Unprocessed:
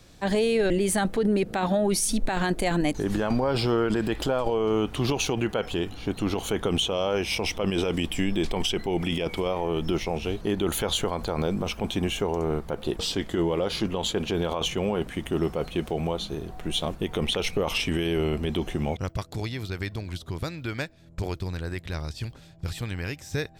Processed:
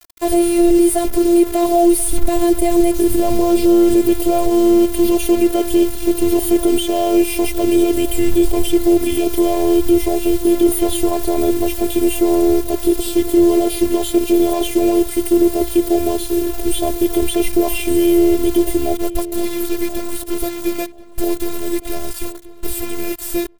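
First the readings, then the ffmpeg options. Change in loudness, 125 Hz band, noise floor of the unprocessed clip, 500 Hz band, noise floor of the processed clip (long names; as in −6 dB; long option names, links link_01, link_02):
+11.5 dB, −2.5 dB, −48 dBFS, +11.0 dB, −29 dBFS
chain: -filter_complex "[0:a]aemphasis=mode=production:type=75fm,acrossover=split=3200[link_01][link_02];[link_02]acompressor=threshold=-31dB:ratio=4:attack=1:release=60[link_03];[link_01][link_03]amix=inputs=2:normalize=0,firequalizer=gain_entry='entry(120,0);entry(190,-12);entry(380,2);entry(560,-1);entry(1500,-25);entry(2100,-14);entry(3800,-17);entry(5900,-20);entry(9300,-1);entry(15000,-2)':delay=0.05:min_phase=1,acontrast=90,acrusher=bits=5:mix=0:aa=0.000001,afftfilt=real='hypot(re,im)*cos(PI*b)':imag='0':win_size=512:overlap=0.75,asplit=2[link_04][link_05];[link_05]adelay=1033,lowpass=frequency=2900:poles=1,volume=-17dB,asplit=2[link_06][link_07];[link_07]adelay=1033,lowpass=frequency=2900:poles=1,volume=0.25[link_08];[link_04][link_06][link_08]amix=inputs=3:normalize=0,alimiter=level_in=11.5dB:limit=-1dB:release=50:level=0:latency=1,volume=-1dB"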